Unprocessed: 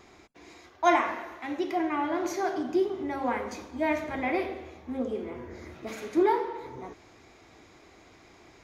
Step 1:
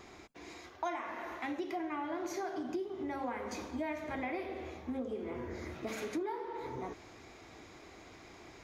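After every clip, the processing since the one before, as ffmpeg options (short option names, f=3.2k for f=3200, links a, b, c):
-af "acompressor=threshold=-36dB:ratio=8,volume=1dB"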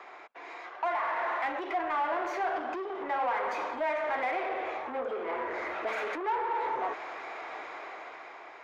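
-filter_complex "[0:a]dynaudnorm=f=280:g=7:m=9dB,asplit=2[a][b];[b]highpass=f=720:p=1,volume=22dB,asoftclip=type=tanh:threshold=-17.5dB[c];[a][c]amix=inputs=2:normalize=0,lowpass=f=1.2k:p=1,volume=-6dB,acrossover=split=500 2900:gain=0.0708 1 0.251[d][e][f];[d][e][f]amix=inputs=3:normalize=0,volume=-1.5dB"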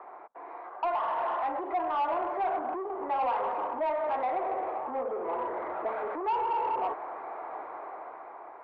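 -af "lowpass=f=950:t=q:w=1.6,asoftclip=type=tanh:threshold=-22.5dB"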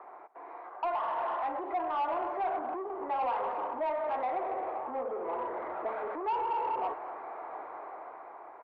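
-af "aecho=1:1:228:0.112,volume=-2.5dB"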